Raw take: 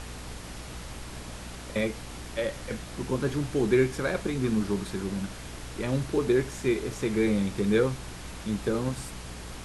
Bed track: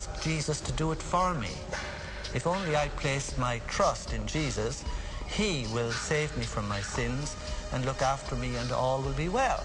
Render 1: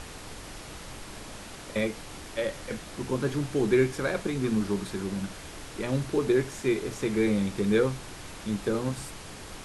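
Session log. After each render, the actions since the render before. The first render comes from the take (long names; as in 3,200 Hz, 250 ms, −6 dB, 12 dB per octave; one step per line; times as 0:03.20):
mains-hum notches 60/120/180/240 Hz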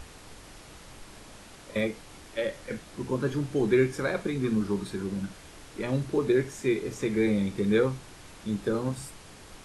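noise reduction from a noise print 6 dB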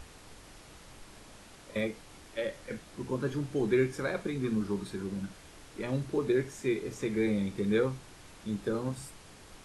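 level −4 dB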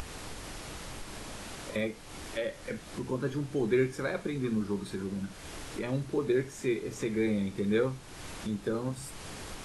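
upward compression, threshold −31 dBFS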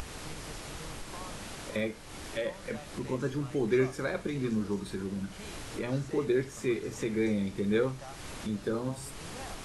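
mix in bed track −19.5 dB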